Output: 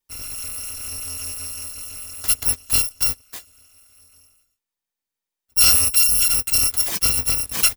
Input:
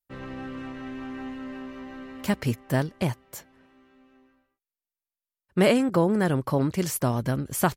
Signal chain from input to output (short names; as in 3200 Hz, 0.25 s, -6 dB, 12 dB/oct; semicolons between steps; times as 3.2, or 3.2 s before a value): FFT order left unsorted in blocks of 256 samples; gain +5.5 dB